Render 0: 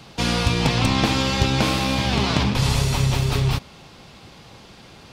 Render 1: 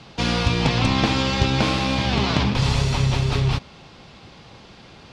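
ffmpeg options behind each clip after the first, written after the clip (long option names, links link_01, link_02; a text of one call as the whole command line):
ffmpeg -i in.wav -af "lowpass=5800" out.wav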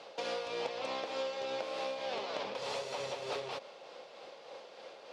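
ffmpeg -i in.wav -af "highpass=frequency=530:width_type=q:width=4.9,acompressor=threshold=-27dB:ratio=6,tremolo=f=3.3:d=0.34,volume=-7dB" out.wav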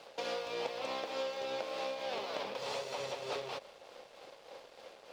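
ffmpeg -i in.wav -af "aeval=exprs='sgn(val(0))*max(abs(val(0))-0.00112,0)':channel_layout=same" out.wav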